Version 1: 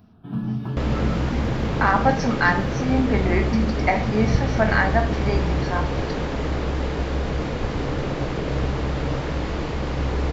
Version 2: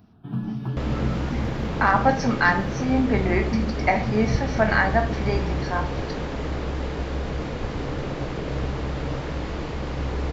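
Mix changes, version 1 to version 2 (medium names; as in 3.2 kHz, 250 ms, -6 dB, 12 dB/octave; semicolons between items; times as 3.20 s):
first sound: send -9.0 dB; second sound -3.5 dB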